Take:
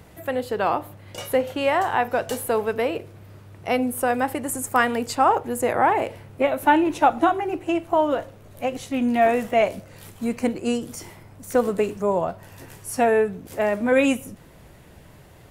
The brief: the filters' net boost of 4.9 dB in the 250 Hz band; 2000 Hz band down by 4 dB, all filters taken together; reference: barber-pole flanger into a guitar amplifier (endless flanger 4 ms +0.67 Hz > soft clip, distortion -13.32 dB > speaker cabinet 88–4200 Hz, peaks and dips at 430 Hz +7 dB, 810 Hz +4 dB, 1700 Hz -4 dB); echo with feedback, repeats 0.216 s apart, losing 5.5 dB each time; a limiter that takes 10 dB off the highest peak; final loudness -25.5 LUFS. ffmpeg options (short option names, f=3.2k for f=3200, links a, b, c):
-filter_complex "[0:a]equalizer=f=250:t=o:g=5,equalizer=f=2k:t=o:g=-3,alimiter=limit=-15.5dB:level=0:latency=1,aecho=1:1:216|432|648|864|1080|1296|1512:0.531|0.281|0.149|0.079|0.0419|0.0222|0.0118,asplit=2[a][b];[b]adelay=4,afreqshift=0.67[c];[a][c]amix=inputs=2:normalize=1,asoftclip=threshold=-23dB,highpass=88,equalizer=f=430:t=q:w=4:g=7,equalizer=f=810:t=q:w=4:g=4,equalizer=f=1.7k:t=q:w=4:g=-4,lowpass=f=4.2k:w=0.5412,lowpass=f=4.2k:w=1.3066,volume=2.5dB"